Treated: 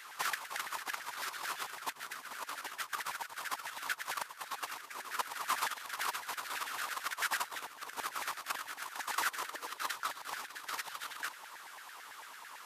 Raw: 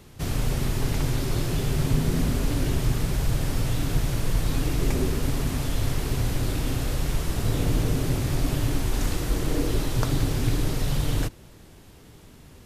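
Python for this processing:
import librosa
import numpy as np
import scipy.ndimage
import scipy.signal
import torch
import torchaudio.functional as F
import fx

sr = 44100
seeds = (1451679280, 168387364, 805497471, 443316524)

y = fx.over_compress(x, sr, threshold_db=-28.0, ratio=-0.5)
y = fx.filter_lfo_highpass(y, sr, shape='saw_down', hz=9.0, low_hz=870.0, high_hz=1800.0, q=5.4)
y = F.gain(torch.from_numpy(y), -4.0).numpy()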